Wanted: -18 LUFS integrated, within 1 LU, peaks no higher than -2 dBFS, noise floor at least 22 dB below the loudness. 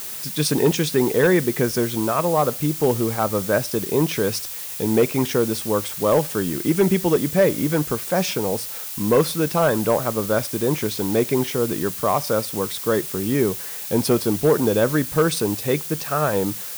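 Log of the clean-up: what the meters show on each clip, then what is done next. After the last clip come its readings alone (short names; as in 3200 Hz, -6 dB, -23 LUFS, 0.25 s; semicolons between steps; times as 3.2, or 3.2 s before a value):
clipped 0.7%; flat tops at -10.0 dBFS; noise floor -32 dBFS; noise floor target -43 dBFS; loudness -21.0 LUFS; peak -10.0 dBFS; loudness target -18.0 LUFS
-> clip repair -10 dBFS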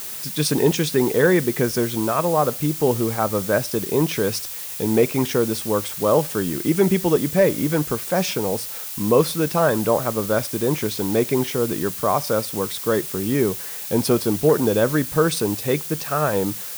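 clipped 0.0%; noise floor -32 dBFS; noise floor target -43 dBFS
-> denoiser 11 dB, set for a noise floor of -32 dBFS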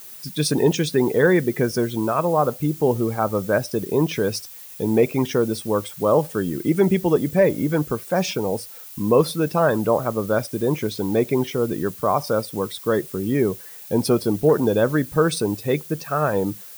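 noise floor -40 dBFS; noise floor target -44 dBFS
-> denoiser 6 dB, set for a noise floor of -40 dBFS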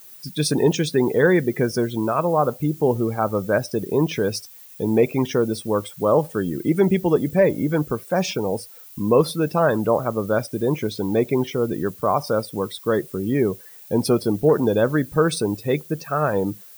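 noise floor -44 dBFS; loudness -21.5 LUFS; peak -4.5 dBFS; loudness target -18.0 LUFS
-> gain +3.5 dB; limiter -2 dBFS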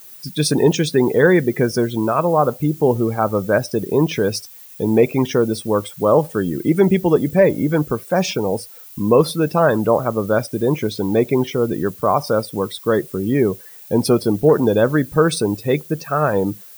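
loudness -18.0 LUFS; peak -2.0 dBFS; noise floor -41 dBFS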